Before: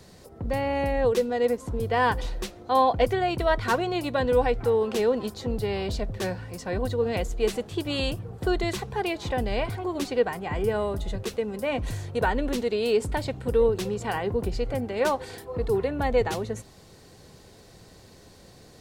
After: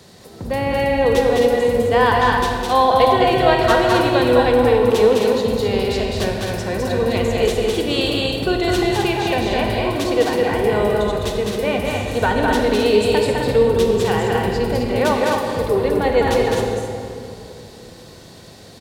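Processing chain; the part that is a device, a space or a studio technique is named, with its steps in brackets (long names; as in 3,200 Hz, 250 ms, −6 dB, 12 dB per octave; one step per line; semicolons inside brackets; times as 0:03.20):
stadium PA (high-pass filter 130 Hz 6 dB per octave; parametric band 3,500 Hz +4 dB 0.47 octaves; loudspeakers that aren't time-aligned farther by 71 metres −3 dB, 89 metres −6 dB; convolution reverb RT60 2.7 s, pre-delay 30 ms, DRR 3 dB)
level +5.5 dB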